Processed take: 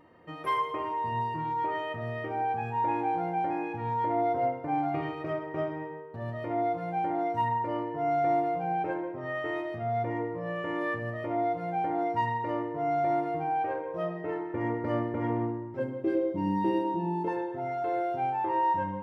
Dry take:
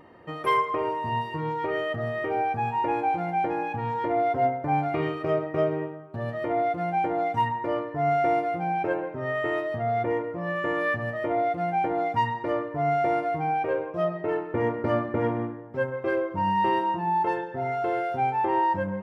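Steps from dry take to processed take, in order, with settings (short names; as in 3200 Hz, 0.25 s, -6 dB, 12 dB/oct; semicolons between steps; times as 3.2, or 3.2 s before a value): 15.79–17.28 EQ curve 100 Hz 0 dB, 290 Hz +12 dB, 1100 Hz -11 dB, 4000 Hz +1 dB; reverb RT60 1.1 s, pre-delay 3 ms, DRR 5 dB; gain -7.5 dB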